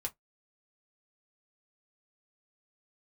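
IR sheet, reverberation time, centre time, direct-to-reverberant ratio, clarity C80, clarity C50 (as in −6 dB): 0.15 s, 6 ms, 0.5 dB, 42.0 dB, 26.0 dB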